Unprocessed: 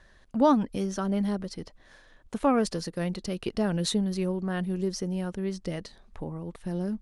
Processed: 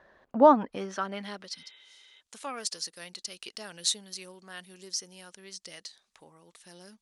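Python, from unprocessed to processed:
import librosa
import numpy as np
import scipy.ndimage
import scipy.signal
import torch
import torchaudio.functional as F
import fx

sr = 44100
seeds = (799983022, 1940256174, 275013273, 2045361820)

y = fx.spec_repair(x, sr, seeds[0], start_s=1.59, length_s=0.59, low_hz=300.0, high_hz=3900.0, source='before')
y = fx.filter_sweep_bandpass(y, sr, from_hz=670.0, to_hz=6800.0, start_s=0.36, end_s=1.88, q=0.89)
y = y * librosa.db_to_amplitude(6.0)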